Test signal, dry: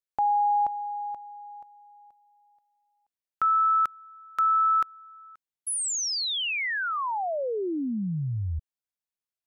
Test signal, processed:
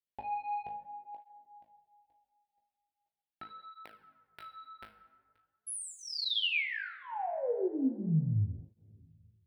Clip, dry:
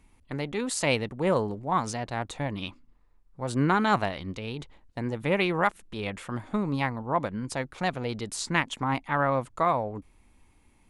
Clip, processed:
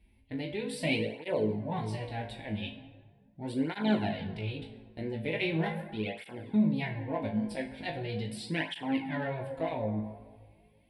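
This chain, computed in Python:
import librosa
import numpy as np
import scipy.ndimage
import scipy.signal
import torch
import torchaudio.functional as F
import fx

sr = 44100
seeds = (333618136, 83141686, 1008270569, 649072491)

p1 = fx.rev_plate(x, sr, seeds[0], rt60_s=1.7, hf_ratio=0.5, predelay_ms=0, drr_db=8.5)
p2 = 10.0 ** (-18.5 / 20.0) * np.tanh(p1 / 10.0 ** (-18.5 / 20.0))
p3 = p1 + (p2 * 10.0 ** (-3.5 / 20.0))
p4 = fx.high_shelf(p3, sr, hz=7200.0, db=-4.0)
p5 = fx.fixed_phaser(p4, sr, hz=2900.0, stages=4)
p6 = p5 + fx.room_flutter(p5, sr, wall_m=3.2, rt60_s=0.25, dry=0)
p7 = fx.flanger_cancel(p6, sr, hz=0.4, depth_ms=7.4)
y = p7 * 10.0 ** (-5.5 / 20.0)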